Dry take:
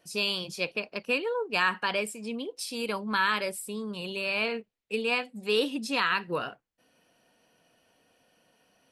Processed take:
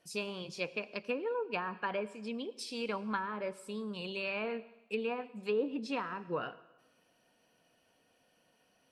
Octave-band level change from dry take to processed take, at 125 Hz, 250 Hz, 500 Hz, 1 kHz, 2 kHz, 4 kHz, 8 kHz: -4.5, -4.5, -4.5, -7.5, -11.5, -13.0, -11.5 dB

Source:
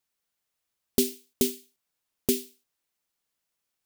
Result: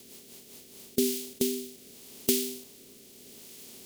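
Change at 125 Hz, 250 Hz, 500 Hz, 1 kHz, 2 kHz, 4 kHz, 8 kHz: -5.0, -0.5, 0.0, -3.5, +1.0, +1.0, +1.0 dB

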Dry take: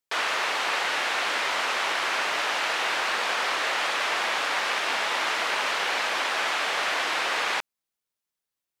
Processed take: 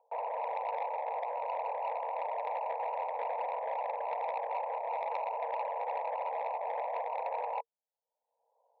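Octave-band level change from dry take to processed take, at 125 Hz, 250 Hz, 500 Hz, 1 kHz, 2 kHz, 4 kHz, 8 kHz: n/a, under -25 dB, -2.0 dB, -5.0 dB, -24.5 dB, under -35 dB, under -40 dB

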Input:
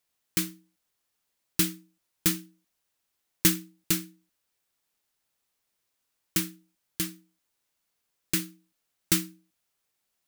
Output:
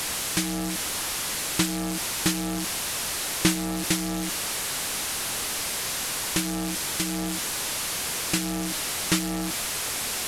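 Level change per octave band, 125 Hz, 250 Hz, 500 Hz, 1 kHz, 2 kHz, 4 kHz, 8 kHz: +6.0, +6.5, +10.5, +16.5, +10.0, +9.5, +8.5 dB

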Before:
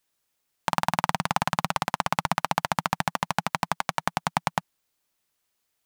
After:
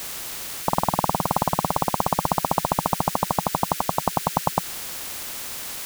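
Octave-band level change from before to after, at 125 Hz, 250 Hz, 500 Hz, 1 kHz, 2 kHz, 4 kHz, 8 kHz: +4.5, +5.5, +7.5, +3.5, -6.0, +1.5, +8.5 dB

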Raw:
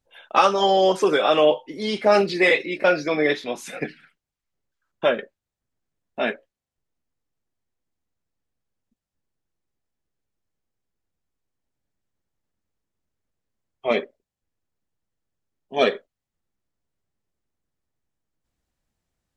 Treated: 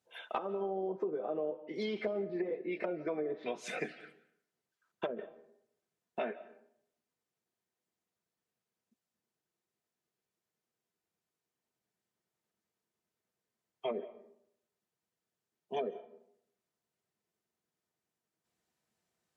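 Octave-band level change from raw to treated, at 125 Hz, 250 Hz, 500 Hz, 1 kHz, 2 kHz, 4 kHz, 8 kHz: -14.5 dB, -13.5 dB, -16.0 dB, -20.0 dB, -21.5 dB, -23.0 dB, n/a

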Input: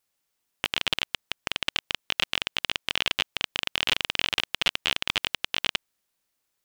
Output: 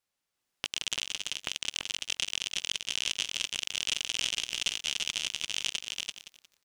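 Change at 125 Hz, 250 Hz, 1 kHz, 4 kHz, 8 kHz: -9.5, -10.0, -13.0, -4.0, +6.5 dB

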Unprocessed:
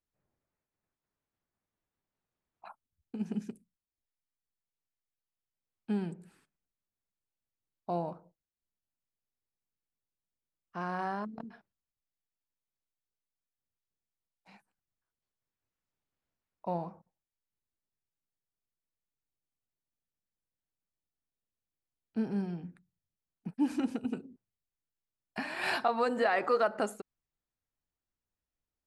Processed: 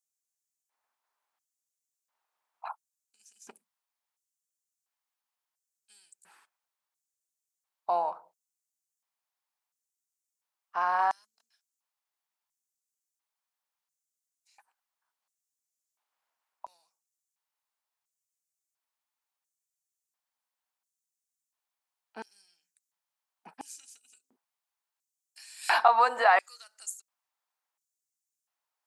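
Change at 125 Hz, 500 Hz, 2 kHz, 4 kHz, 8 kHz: under -25 dB, -1.0 dB, +5.5 dB, +3.5 dB, n/a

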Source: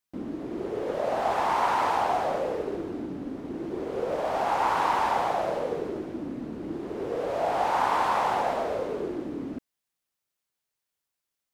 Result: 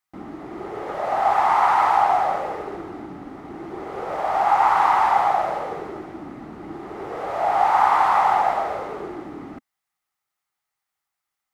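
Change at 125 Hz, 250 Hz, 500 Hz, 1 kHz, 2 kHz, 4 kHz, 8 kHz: -0.5 dB, -2.0 dB, +0.5 dB, +8.0 dB, +5.5 dB, +0.5 dB, n/a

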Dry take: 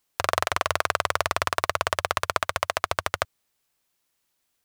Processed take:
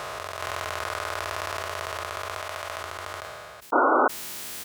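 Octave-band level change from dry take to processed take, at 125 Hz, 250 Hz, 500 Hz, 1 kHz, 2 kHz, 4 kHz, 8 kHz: -5.0, +10.5, +0.5, 0.0, -2.5, -5.5, -3.0 dB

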